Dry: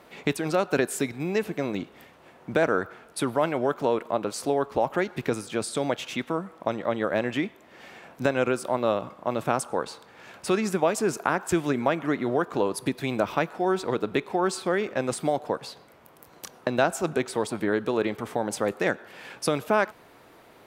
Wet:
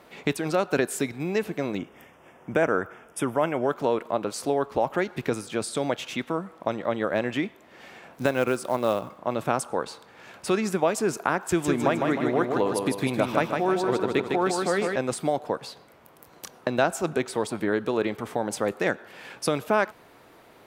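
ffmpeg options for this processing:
ffmpeg -i in.wav -filter_complex "[0:a]asettb=1/sr,asplit=3[link_01][link_02][link_03];[link_01]atrim=end=1.784[link_04];[link_02]atrim=start=1.78:end=3.69,asetpts=PTS-STARTPTS,afade=type=in:duration=0.004:curve=qsin,afade=type=out:start_time=1.906:duration=0.004:curve=qsin,asuperstop=centerf=4200:order=4:qfactor=2.3[link_05];[link_03]atrim=start=3.686[link_06];[link_04][link_05]acrossfade=duration=0.004:curve1=hsin:curve2=qsin[link_07];[link_07][link_06]acrossfade=duration=0.004:curve1=qsin:curve2=hsin,asettb=1/sr,asplit=3[link_08][link_09][link_10];[link_08]atrim=end=8.134[link_11];[link_09]atrim=start=8.13:end=9.19,asetpts=PTS-STARTPTS,afade=type=in:duration=0.004:curve=qsin,afade=type=out:start_time=1.056:duration=0.004:curve=qsin,acrusher=bits=6:mode=log:mix=0:aa=0.000001[link_12];[link_10]atrim=start=9.186[link_13];[link_11][link_12]acrossfade=duration=0.004:curve1=hsin:curve2=qsin[link_14];[link_14][link_13]acrossfade=duration=0.004:curve1=qsin:curve2=hsin,asettb=1/sr,asplit=3[link_15][link_16][link_17];[link_15]atrim=end=11.454[link_18];[link_16]atrim=start=11.45:end=14.96,asetpts=PTS-STARTPTS,afade=type=in:duration=0.004:curve=qsin,afade=type=out:start_time=3.506:duration=0.004:curve=qsin,aecho=1:1:155|310|465|620|775|930:0.631|0.297|0.139|0.0655|0.0308|0.0145,atrim=end_sample=154791[link_19];[link_17]atrim=start=14.956[link_20];[link_18][link_19]acrossfade=duration=0.004:curve1=hsin:curve2=qsin[link_21];[link_21][link_20]acrossfade=duration=0.004:curve1=qsin:curve2=hsin" out.wav

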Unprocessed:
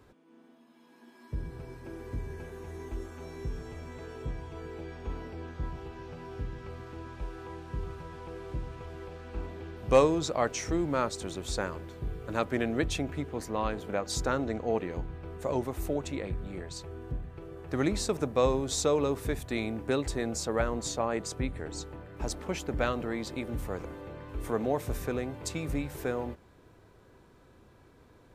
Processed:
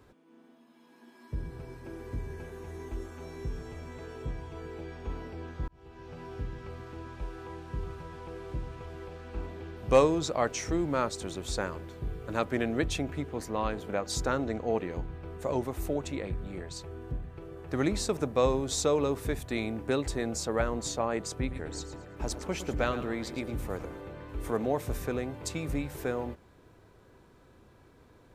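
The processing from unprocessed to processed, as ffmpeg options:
ffmpeg -i in.wav -filter_complex "[0:a]asettb=1/sr,asplit=3[link_01][link_02][link_03];[link_01]atrim=end=21.324[link_04];[link_02]atrim=start=21.32:end=24.57,asetpts=PTS-STARTPTS,afade=type=in:duration=0.004:curve=qsin,afade=type=out:start_time=3.246:duration=0.004:curve=qsin,aecho=1:1:112|224|336:0.251|0.0754|0.0226,atrim=end_sample=143325[link_05];[link_03]atrim=start=24.566[link_06];[link_04][link_05]acrossfade=duration=0.004:curve1=hsin:curve2=qsin[link_07];[link_07][link_06]acrossfade=duration=0.004:curve1=qsin:curve2=hsin,asplit=2[link_08][link_09];[link_08]atrim=end=5.68,asetpts=PTS-STARTPTS,afade=type=out:start_time=5.676:duration=0.004:curve=hsin[link_10];[link_09]atrim=start=5.68,asetpts=PTS-STARTPTS,afade=type=in:duration=0.52[link_11];[link_10][link_11]concat=n=2:v=0:a=1" out.wav

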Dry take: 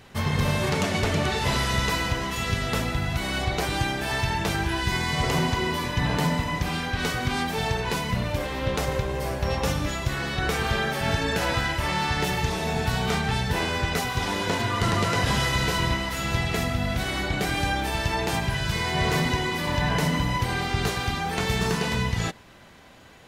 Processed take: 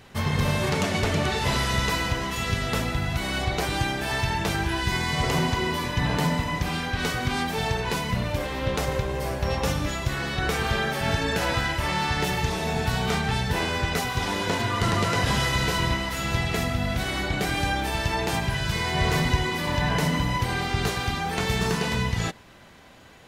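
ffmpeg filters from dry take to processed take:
ffmpeg -i in.wav -filter_complex "[0:a]asettb=1/sr,asplit=3[link_01][link_02][link_03];[link_01]atrim=end=18.814[link_04];[link_02]atrim=start=18.81:end=19.44,asetpts=PTS-STARTPTS,afade=type=in:duration=0.004:curve=qsin,afade=type=out:start_time=0.626:duration=0.004:curve=qsin,asubboost=boost=10:cutoff=130[link_05];[link_03]atrim=start=19.436[link_06];[link_04][link_05]acrossfade=duration=0.004:curve1=hsin:curve2=qsin[link_07];[link_07][link_06]acrossfade=duration=0.004:curve1=qsin:curve2=hsin" out.wav

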